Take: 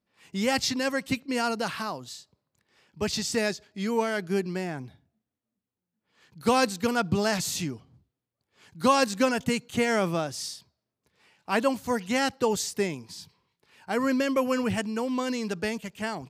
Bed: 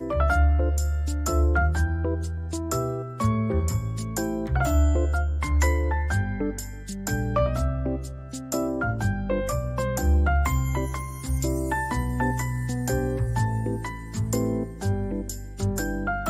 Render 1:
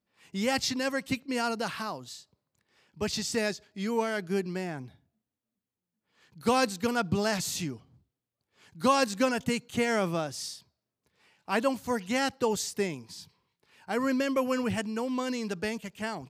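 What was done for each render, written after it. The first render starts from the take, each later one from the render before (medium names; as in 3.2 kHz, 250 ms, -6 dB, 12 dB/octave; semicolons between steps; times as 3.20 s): trim -2.5 dB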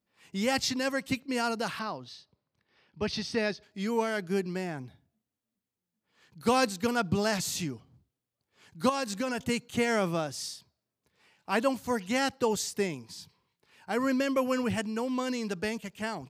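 1.79–3.63 s: Savitzky-Golay filter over 15 samples; 8.89–9.49 s: compression 4:1, threshold -28 dBFS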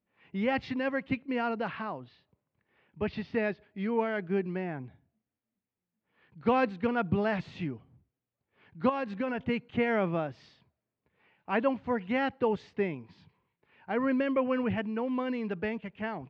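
low-pass 2.6 kHz 24 dB/octave; peaking EQ 1.3 kHz -2.5 dB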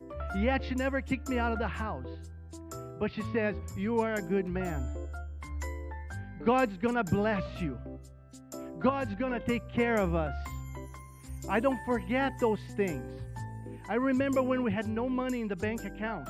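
add bed -15.5 dB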